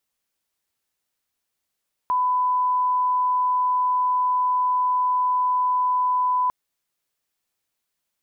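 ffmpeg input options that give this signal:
-f lavfi -i "sine=f=1000:d=4.4:r=44100,volume=0.06dB"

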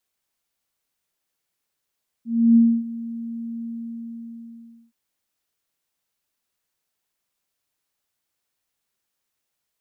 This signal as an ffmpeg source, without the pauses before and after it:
-f lavfi -i "aevalsrc='0.335*sin(2*PI*231*t)':d=2.67:s=44100,afade=t=in:d=0.307,afade=t=out:st=0.307:d=0.275:silence=0.119,afade=t=out:st=1.39:d=1.28"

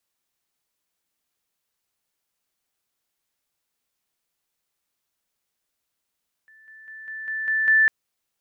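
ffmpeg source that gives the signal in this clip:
-f lavfi -i "aevalsrc='pow(10,(-49.5+6*floor(t/0.2))/20)*sin(2*PI*1760*t)':d=1.4:s=44100"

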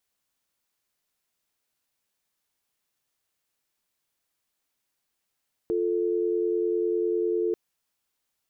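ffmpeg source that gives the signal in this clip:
-f lavfi -i "aevalsrc='0.0531*(sin(2*PI*350*t)+sin(2*PI*440*t))':d=1.84:s=44100"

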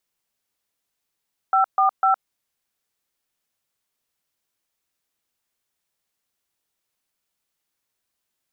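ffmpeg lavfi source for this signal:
-f lavfi -i "aevalsrc='0.141*clip(min(mod(t,0.25),0.113-mod(t,0.25))/0.002,0,1)*(eq(floor(t/0.25),0)*(sin(2*PI*770*mod(t,0.25))+sin(2*PI*1336*mod(t,0.25)))+eq(floor(t/0.25),1)*(sin(2*PI*770*mod(t,0.25))+sin(2*PI*1209*mod(t,0.25)))+eq(floor(t/0.25),2)*(sin(2*PI*770*mod(t,0.25))+sin(2*PI*1336*mod(t,0.25))))':d=0.75:s=44100"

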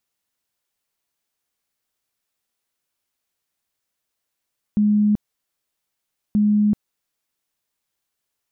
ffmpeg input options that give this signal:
-f lavfi -i "aevalsrc='0.211*sin(2*PI*209*mod(t,1.58))*lt(mod(t,1.58),80/209)':d=3.16:s=44100"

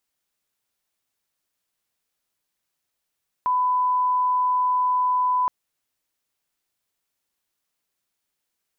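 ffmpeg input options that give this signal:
-f lavfi -i "sine=f=1000:d=2.02:r=44100,volume=0.06dB"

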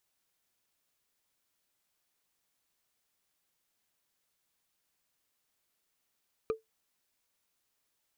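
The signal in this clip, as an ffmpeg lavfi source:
-f lavfi -i "aevalsrc='0.0668*pow(10,-3*t/0.15)*sin(2*PI*443*t)+0.0282*pow(10,-3*t/0.044)*sin(2*PI*1221.4*t)+0.0119*pow(10,-3*t/0.02)*sin(2*PI*2394*t)+0.00501*pow(10,-3*t/0.011)*sin(2*PI*3957.3*t)+0.00211*pow(10,-3*t/0.007)*sin(2*PI*5909.6*t)':d=0.45:s=44100"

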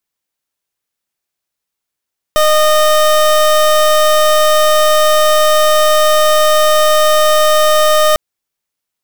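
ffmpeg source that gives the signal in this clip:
-f lavfi -i "aevalsrc='0.335*(2*lt(mod(614*t,1),0.27)-1)':d=5.8:s=44100"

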